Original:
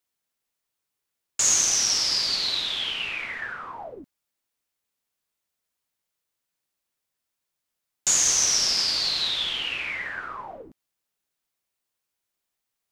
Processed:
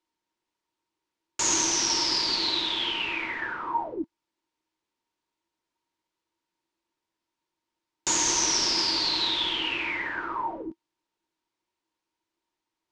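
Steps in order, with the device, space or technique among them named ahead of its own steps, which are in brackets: inside a cardboard box (low-pass 5.5 kHz 12 dB/octave; small resonant body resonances 330/930 Hz, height 17 dB, ringing for 65 ms)

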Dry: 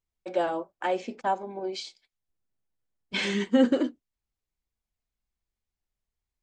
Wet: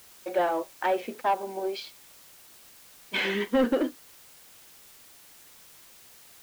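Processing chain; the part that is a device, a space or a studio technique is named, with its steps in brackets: tape answering machine (band-pass 310–3100 Hz; saturation -21 dBFS, distortion -14 dB; wow and flutter; white noise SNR 21 dB); trim +4 dB

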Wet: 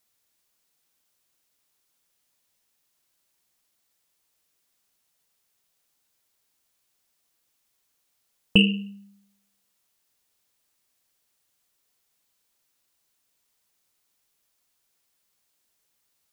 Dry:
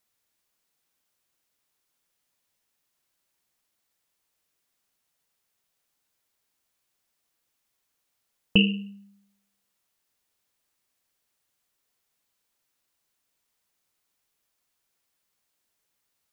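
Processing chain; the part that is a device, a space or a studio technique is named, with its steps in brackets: exciter from parts (in parallel at -8.5 dB: high-pass 2.5 kHz 12 dB/octave + saturation -21 dBFS, distortion -11 dB); on the sum: trim +2 dB

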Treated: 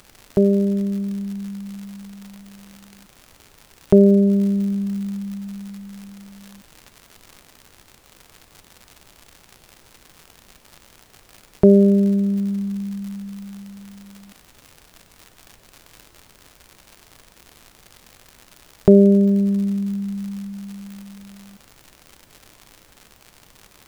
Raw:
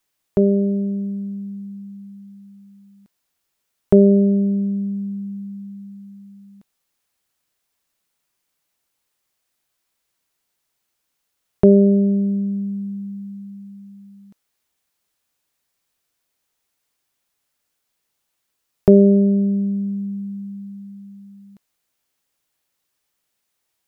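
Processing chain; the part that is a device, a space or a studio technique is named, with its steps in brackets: vinyl LP (crackle 130 per s -30 dBFS; pink noise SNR 31 dB)

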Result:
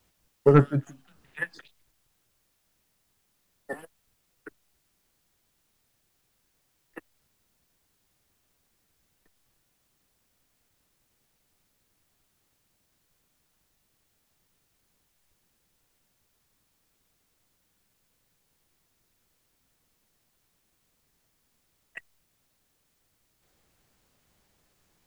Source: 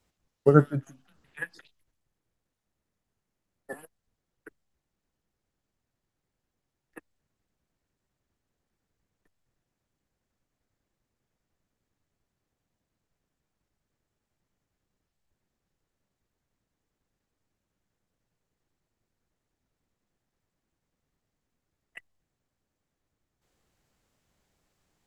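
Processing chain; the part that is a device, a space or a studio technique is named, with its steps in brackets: compact cassette (saturation -11.5 dBFS, distortion -12 dB; low-pass 8.2 kHz; wow and flutter; white noise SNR 37 dB); trim +4 dB

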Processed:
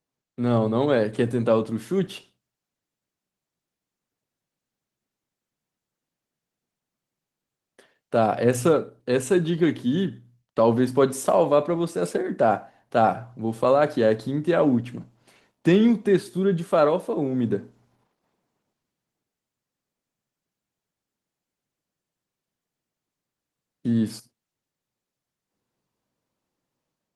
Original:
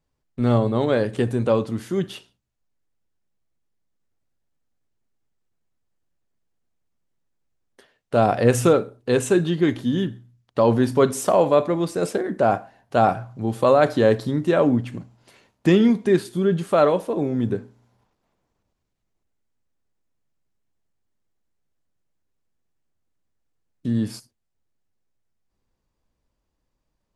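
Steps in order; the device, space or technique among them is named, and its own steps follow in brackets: 9.82–10.73 s: expander -53 dBFS; video call (high-pass 120 Hz 24 dB/octave; level rider gain up to 6 dB; trim -5 dB; Opus 20 kbps 48 kHz)

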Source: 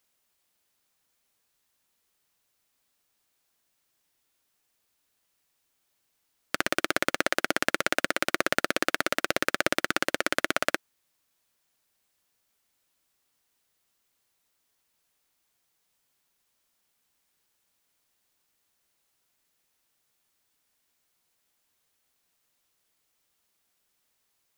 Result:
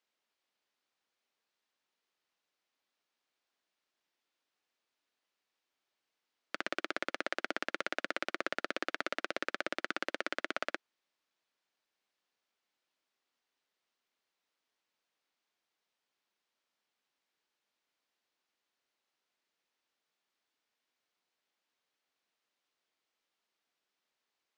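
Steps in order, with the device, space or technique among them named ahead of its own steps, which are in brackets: DJ mixer with the lows and highs turned down (three-band isolator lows -19 dB, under 200 Hz, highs -20 dB, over 5.6 kHz; peak limiter -10 dBFS, peak gain reduction 6 dB); trim -6 dB

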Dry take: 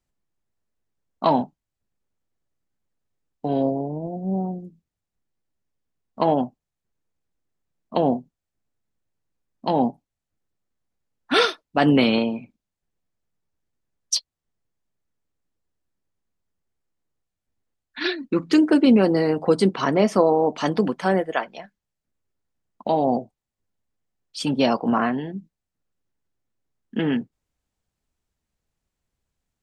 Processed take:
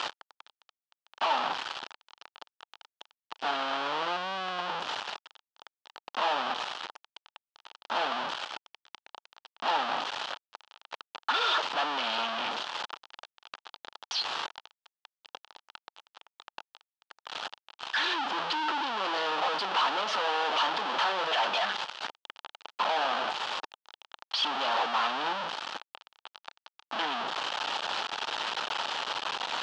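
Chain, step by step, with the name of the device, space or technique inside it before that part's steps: home computer beeper (one-bit comparator; cabinet simulation 770–4300 Hz, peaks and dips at 880 Hz +7 dB, 1.3 kHz +4 dB, 2.1 kHz -7 dB, 3.1 kHz +5 dB)

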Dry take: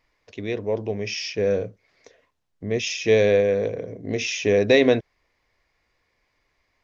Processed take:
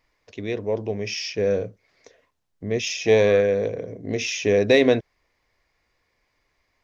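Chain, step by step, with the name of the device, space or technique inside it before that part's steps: 2.95–3.45 s: peaking EQ 590 Hz -> 1.5 kHz +12 dB 0.41 oct; exciter from parts (in parallel at -12 dB: high-pass 2.2 kHz 6 dB/octave + saturation -24 dBFS, distortion -12 dB + high-pass 3.1 kHz)

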